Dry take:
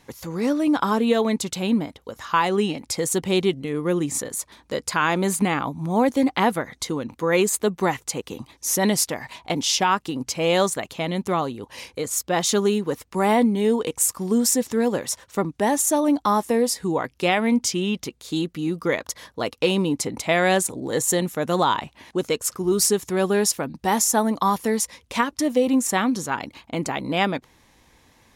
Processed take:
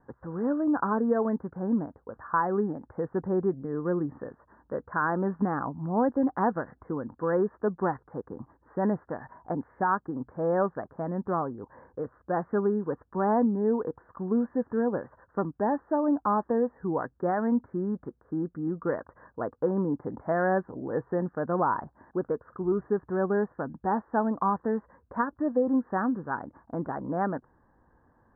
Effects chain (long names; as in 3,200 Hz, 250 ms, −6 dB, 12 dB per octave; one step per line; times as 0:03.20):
Butterworth low-pass 1,700 Hz 96 dB per octave
level −5.5 dB